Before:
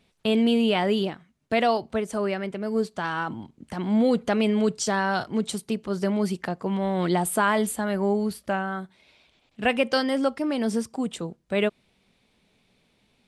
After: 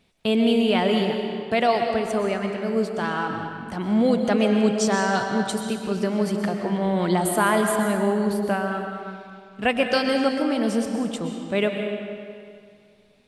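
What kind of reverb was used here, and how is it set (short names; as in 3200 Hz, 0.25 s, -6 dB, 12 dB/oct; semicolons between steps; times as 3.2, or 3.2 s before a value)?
digital reverb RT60 2.2 s, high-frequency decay 0.8×, pre-delay 85 ms, DRR 3.5 dB; gain +1 dB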